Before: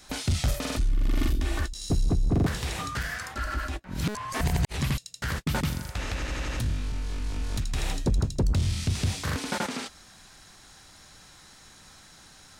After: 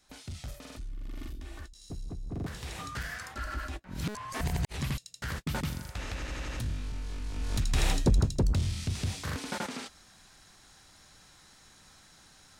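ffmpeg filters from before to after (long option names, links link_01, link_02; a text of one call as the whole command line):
ffmpeg -i in.wav -af "volume=3dB,afade=type=in:start_time=2.25:duration=0.76:silence=0.316228,afade=type=in:start_time=7.32:duration=0.5:silence=0.375837,afade=type=out:start_time=7.82:duration=0.91:silence=0.375837" out.wav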